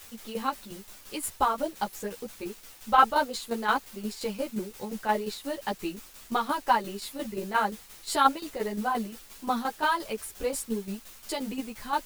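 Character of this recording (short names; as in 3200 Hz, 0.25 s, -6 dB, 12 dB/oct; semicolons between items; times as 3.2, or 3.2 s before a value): a quantiser's noise floor 8-bit, dither triangular; tremolo saw down 5.7 Hz, depth 65%; a shimmering, thickened sound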